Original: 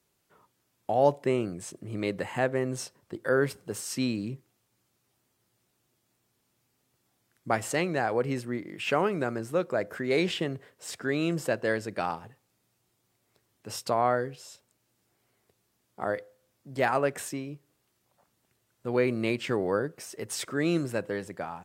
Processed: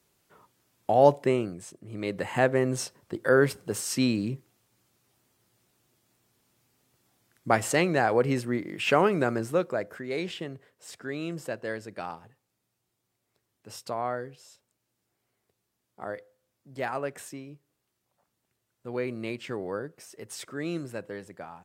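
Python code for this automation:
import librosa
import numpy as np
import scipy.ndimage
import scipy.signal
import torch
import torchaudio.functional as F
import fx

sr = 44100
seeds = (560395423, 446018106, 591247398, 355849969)

y = fx.gain(x, sr, db=fx.line((1.18, 4.0), (1.8, -6.0), (2.38, 4.0), (9.44, 4.0), (10.06, -6.0)))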